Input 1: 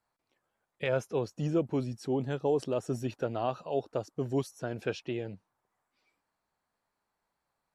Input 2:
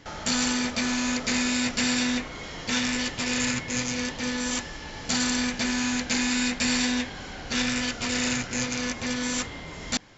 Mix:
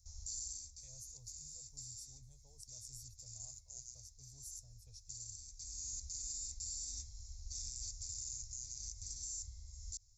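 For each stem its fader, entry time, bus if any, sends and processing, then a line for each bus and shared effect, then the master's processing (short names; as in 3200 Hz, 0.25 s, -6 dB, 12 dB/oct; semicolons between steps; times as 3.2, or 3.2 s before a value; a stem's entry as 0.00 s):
-1.5 dB, 0.00 s, no send, dry
-4.0 dB, 0.00 s, no send, auto duck -12 dB, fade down 0.45 s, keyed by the first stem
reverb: off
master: inverse Chebyshev band-stop 160–3200 Hz, stop band 40 dB; limiter -33 dBFS, peak gain reduction 11 dB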